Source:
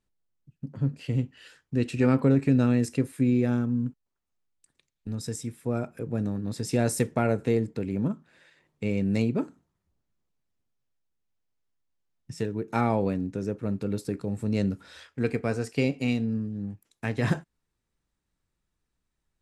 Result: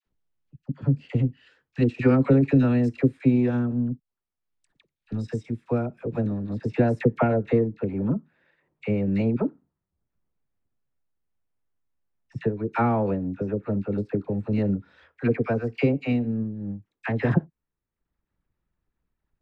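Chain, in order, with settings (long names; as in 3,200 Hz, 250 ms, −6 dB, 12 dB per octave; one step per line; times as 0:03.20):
low-pass filter 3,600 Hz 12 dB per octave, from 0:06.49 2,100 Hz
transient designer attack +5 dB, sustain −7 dB
all-pass dispersion lows, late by 62 ms, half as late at 840 Hz
level +1.5 dB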